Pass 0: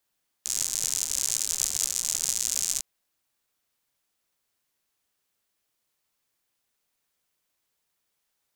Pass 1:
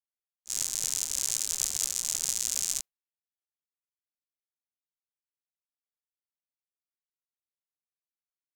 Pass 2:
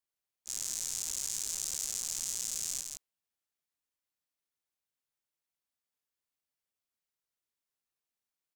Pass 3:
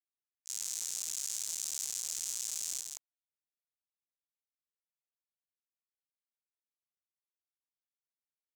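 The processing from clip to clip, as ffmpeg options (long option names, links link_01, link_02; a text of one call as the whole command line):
ffmpeg -i in.wav -af "agate=range=-33dB:threshold=-29dB:ratio=3:detection=peak,volume=-2.5dB" out.wav
ffmpeg -i in.wav -af "acontrast=74,alimiter=limit=-14dB:level=0:latency=1:release=57,aecho=1:1:162:0.562,volume=-4dB" out.wav
ffmpeg -i in.wav -af "areverse,acompressor=mode=upward:threshold=-42dB:ratio=2.5,areverse,acrusher=bits=6:mix=0:aa=0.5,volume=-1.5dB" out.wav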